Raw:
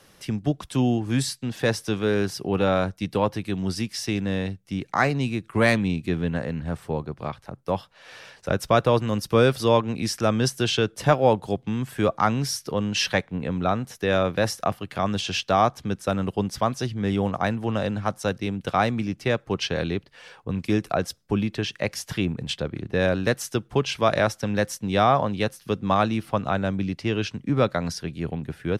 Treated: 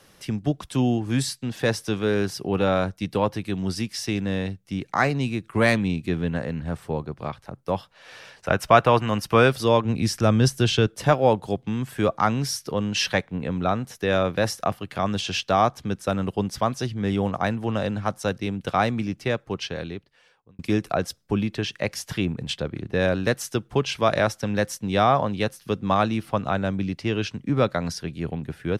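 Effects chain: 8.43–9.48 spectral gain 610–3200 Hz +6 dB; 9.85–10.87 low shelf 150 Hz +10.5 dB; 19.07–20.59 fade out

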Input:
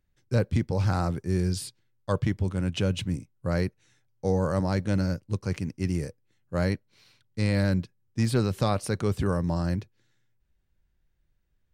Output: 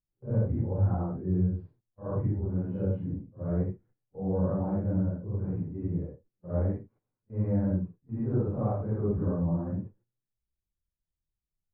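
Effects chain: phase scrambler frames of 0.2 s; Bessel low-pass 710 Hz, order 4; gate -54 dBFS, range -14 dB; gain -2.5 dB

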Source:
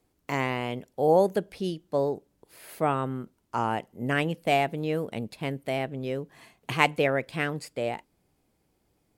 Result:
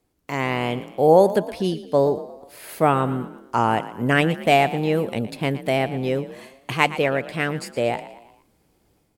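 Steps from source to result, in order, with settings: AGC gain up to 8 dB; on a send: frequency-shifting echo 0.116 s, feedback 47%, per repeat +39 Hz, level -15 dB

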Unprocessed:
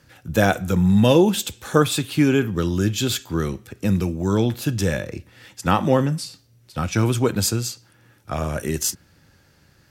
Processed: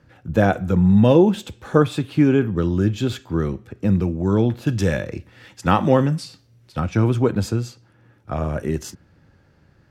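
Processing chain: LPF 1100 Hz 6 dB/oct, from 4.67 s 3200 Hz, from 6.8 s 1100 Hz; gain +2 dB

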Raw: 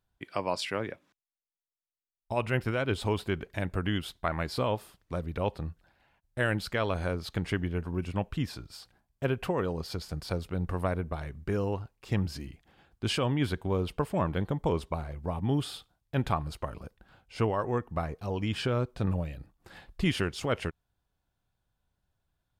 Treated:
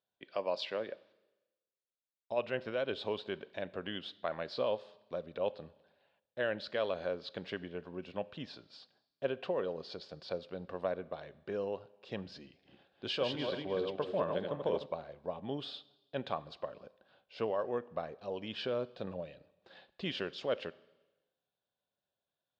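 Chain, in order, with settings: 12.45–14.86 regenerating reverse delay 0.151 s, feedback 45%, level -4 dB; speaker cabinet 290–4600 Hz, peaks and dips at 310 Hz -5 dB, 560 Hz +6 dB, 890 Hz -5 dB, 1300 Hz -6 dB, 2100 Hz -7 dB, 3700 Hz +4 dB; Schroeder reverb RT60 1.1 s, combs from 29 ms, DRR 19.5 dB; gain -4.5 dB

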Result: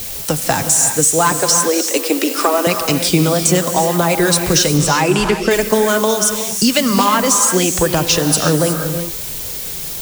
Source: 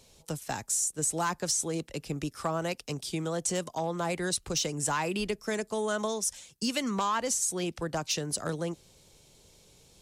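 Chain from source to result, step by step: 1.32–2.67 elliptic high-pass 250 Hz, stop band 40 dB; compressor 3:1, threshold -38 dBFS, peak gain reduction 10 dB; flange 0.75 Hz, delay 0.2 ms, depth 7.6 ms, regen +50%; added noise blue -55 dBFS; 4.77–5.51 air absorption 52 m; non-linear reverb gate 0.39 s rising, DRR 6.5 dB; maximiser +29 dB; gain -1 dB

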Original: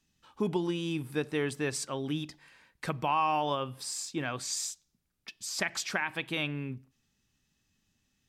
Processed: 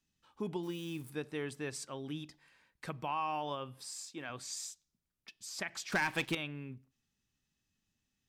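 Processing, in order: 0.63–1.1 switching spikes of -38.5 dBFS; 3.87–4.3 HPF 320 Hz 6 dB/oct; 5.92–6.35 sample leveller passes 3; gain -8 dB

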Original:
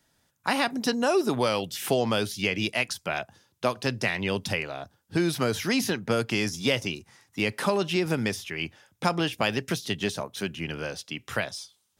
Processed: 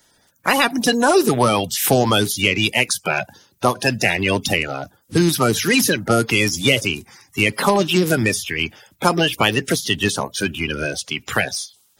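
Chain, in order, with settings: bin magnitudes rounded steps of 30 dB; high shelf 8800 Hz +10 dB; in parallel at -6 dB: soft clip -18.5 dBFS, distortion -14 dB; on the sum: gain +6.5 dB

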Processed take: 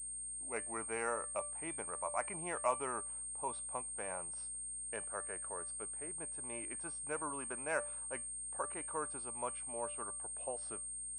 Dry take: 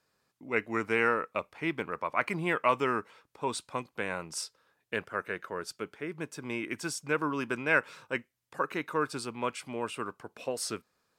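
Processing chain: gate with hold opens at -53 dBFS; bell 760 Hz +14.5 dB 1.2 oct; buzz 60 Hz, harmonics 12, -47 dBFS -8 dB/oct; resonator 590 Hz, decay 0.31 s, mix 70%; pulse-width modulation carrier 8600 Hz; gain -7.5 dB

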